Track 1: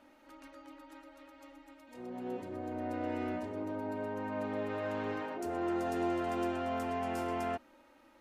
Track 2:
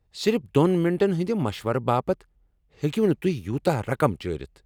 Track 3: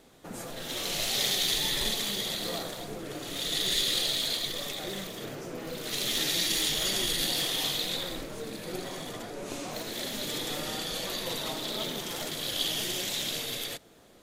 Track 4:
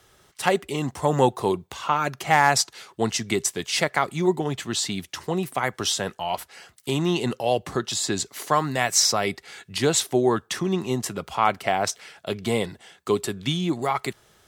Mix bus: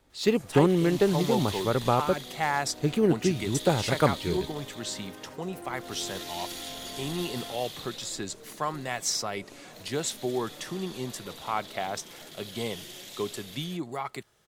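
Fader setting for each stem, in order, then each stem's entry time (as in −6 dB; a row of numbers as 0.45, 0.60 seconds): −9.5, −1.5, −11.5, −9.5 decibels; 0.00, 0.00, 0.00, 0.10 seconds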